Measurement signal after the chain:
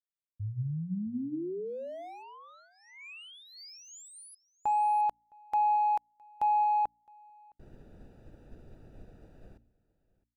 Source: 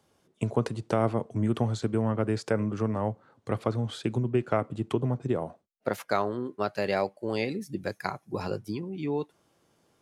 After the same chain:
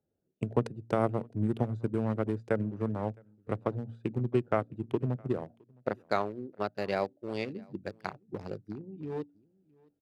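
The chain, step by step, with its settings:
adaptive Wiener filter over 41 samples
hum removal 57.59 Hz, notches 5
on a send: single-tap delay 663 ms −20.5 dB
on the sum: expander for the loud parts 1.5 to 1, over −44 dBFS

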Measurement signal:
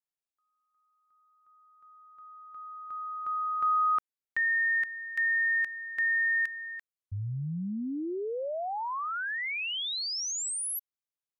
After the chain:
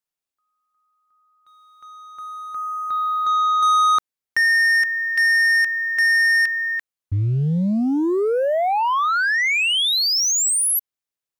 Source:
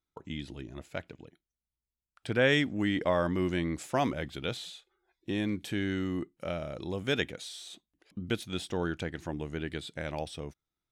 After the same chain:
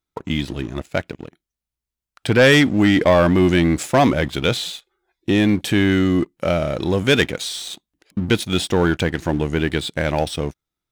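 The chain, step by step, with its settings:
leveller curve on the samples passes 2
level +8.5 dB

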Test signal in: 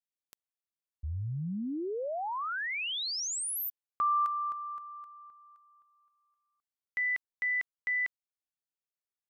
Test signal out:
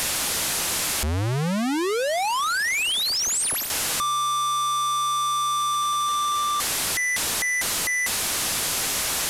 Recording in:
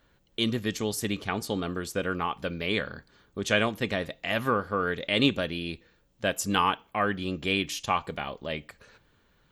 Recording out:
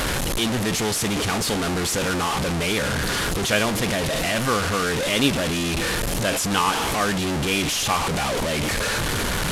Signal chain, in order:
linear delta modulator 64 kbit/s, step −20.5 dBFS
level +3 dB

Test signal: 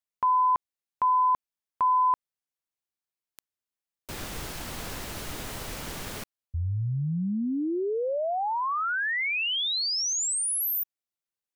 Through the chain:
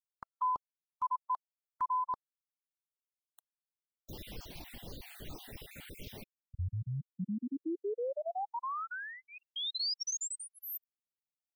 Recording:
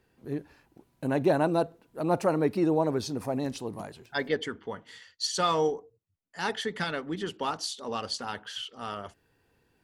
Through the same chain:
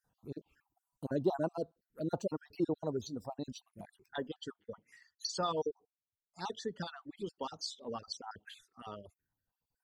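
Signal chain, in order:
time-frequency cells dropped at random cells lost 39%
reverb reduction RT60 1.9 s
phaser swept by the level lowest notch 360 Hz, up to 2,200 Hz, full sweep at −34 dBFS
level −5 dB

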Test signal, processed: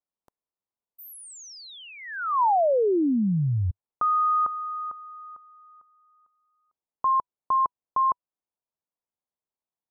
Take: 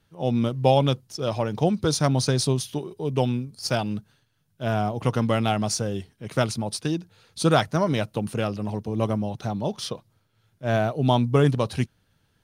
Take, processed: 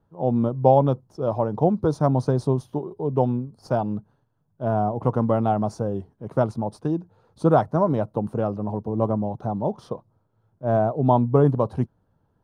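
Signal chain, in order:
drawn EQ curve 100 Hz 0 dB, 980 Hz +4 dB, 2,300 Hz −20 dB

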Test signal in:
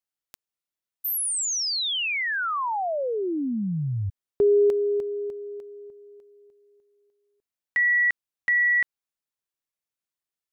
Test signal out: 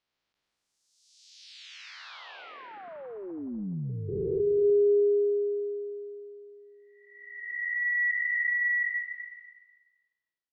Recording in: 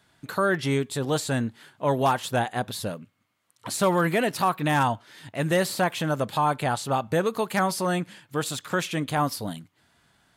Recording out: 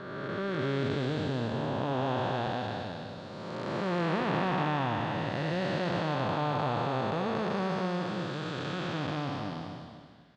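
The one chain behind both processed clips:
spectrum smeared in time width 762 ms
low-pass filter 4,900 Hz 24 dB per octave
on a send: repeating echo 247 ms, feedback 27%, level −10.5 dB

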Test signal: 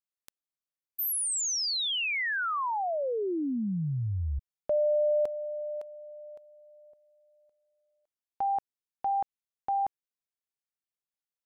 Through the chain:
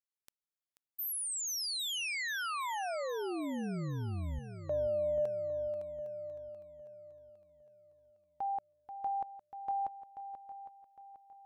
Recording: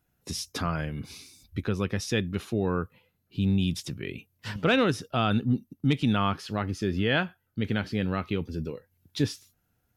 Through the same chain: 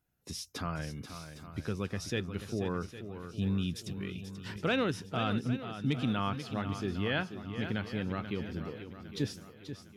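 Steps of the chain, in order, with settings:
feedback echo with a long and a short gap by turns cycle 808 ms, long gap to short 1.5 to 1, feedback 37%, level −10 dB
level −7 dB

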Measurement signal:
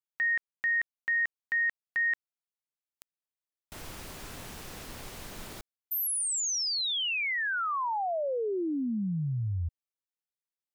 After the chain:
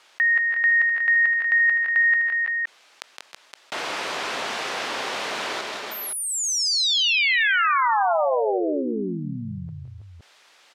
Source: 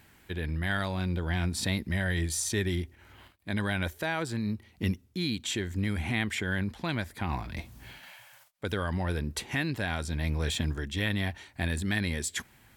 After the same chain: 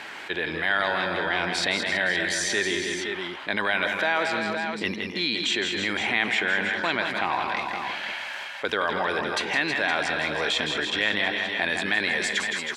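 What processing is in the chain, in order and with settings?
band-pass filter 520–4,200 Hz
multi-tap delay 164/187/312/326/513/518 ms −9/−12.5/−18/−11.5/−20/−12.5 dB
envelope flattener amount 50%
level +7 dB

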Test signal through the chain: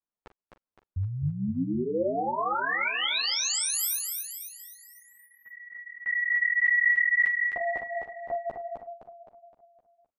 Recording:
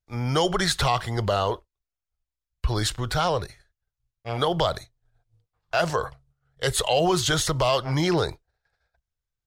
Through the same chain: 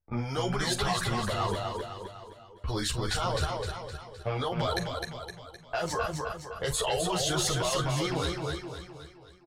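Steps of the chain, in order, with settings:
low-pass that shuts in the quiet parts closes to 1,100 Hz, open at −21 dBFS
reverb reduction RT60 0.52 s
in parallel at −1 dB: downward compressor 10 to 1, threshold −30 dBFS
on the sum: brickwall limiter −18.5 dBFS
output level in coarse steps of 18 dB
double-tracking delay 42 ms −13.5 dB
on a send: repeating echo 258 ms, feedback 49%, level −4 dB
on the sum: string-ensemble chorus
level +9 dB

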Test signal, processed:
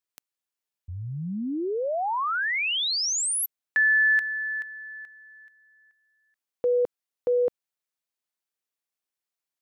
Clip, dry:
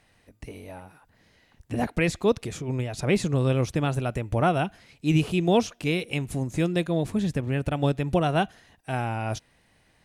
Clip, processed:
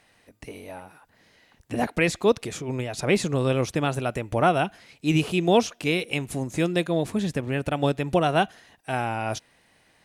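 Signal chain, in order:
low-shelf EQ 150 Hz −11.5 dB
level +3.5 dB

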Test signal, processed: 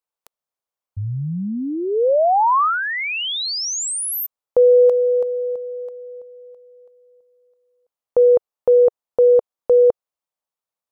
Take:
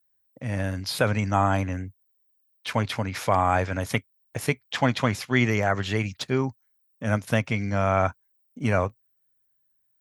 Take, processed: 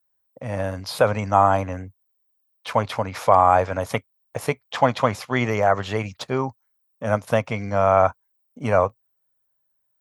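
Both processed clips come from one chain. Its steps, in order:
flat-topped bell 760 Hz +9 dB
level −1.5 dB

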